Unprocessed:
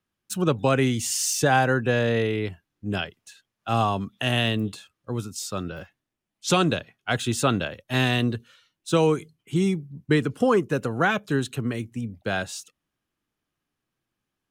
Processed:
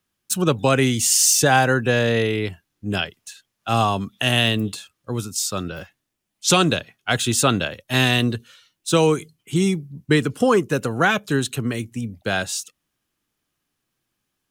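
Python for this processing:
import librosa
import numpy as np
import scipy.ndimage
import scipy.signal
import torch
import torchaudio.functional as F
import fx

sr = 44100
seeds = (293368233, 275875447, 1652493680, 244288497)

y = fx.high_shelf(x, sr, hz=3400.0, db=8.0)
y = y * librosa.db_to_amplitude(3.0)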